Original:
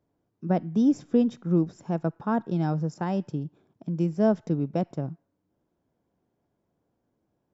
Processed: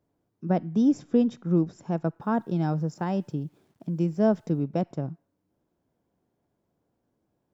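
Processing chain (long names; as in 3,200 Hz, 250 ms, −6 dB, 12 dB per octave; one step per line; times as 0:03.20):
0:02.21–0:04.63: bit-depth reduction 12 bits, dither none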